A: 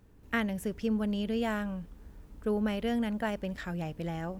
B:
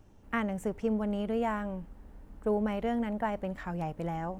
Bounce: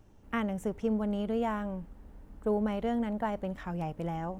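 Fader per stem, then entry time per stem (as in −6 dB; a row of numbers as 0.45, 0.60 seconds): −16.5, −1.0 decibels; 0.00, 0.00 seconds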